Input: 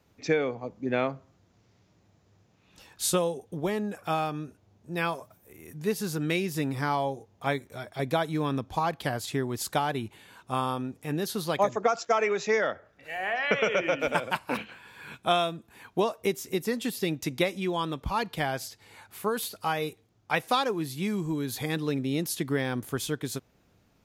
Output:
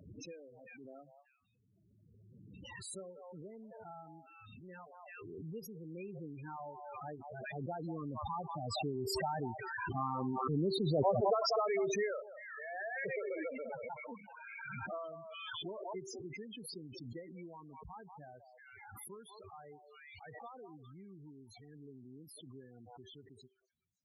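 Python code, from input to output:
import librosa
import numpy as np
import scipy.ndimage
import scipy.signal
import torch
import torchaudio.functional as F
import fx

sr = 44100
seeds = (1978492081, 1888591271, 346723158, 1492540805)

p1 = fx.doppler_pass(x, sr, speed_mps=19, closest_m=18.0, pass_at_s=10.4)
p2 = scipy.signal.sosfilt(scipy.signal.butter(4, 52.0, 'highpass', fs=sr, output='sos'), p1)
p3 = fx.high_shelf(p2, sr, hz=2400.0, db=-2.0)
p4 = np.clip(p3, -10.0 ** (-25.0 / 20.0), 10.0 ** (-25.0 / 20.0))
p5 = p3 + (p4 * librosa.db_to_amplitude(-11.5))
p6 = fx.comb_fb(p5, sr, f0_hz=390.0, decay_s=0.37, harmonics='odd', damping=0.0, mix_pct=50)
p7 = p6 + fx.echo_stepped(p6, sr, ms=192, hz=830.0, octaves=1.4, feedback_pct=70, wet_db=-7.5, dry=0)
p8 = fx.spec_topn(p7, sr, count=8)
y = fx.pre_swell(p8, sr, db_per_s=23.0)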